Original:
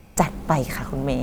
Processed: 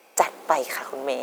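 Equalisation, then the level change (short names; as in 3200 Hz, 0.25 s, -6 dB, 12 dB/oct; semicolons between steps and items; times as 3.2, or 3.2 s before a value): HPF 400 Hz 24 dB/oct; +1.5 dB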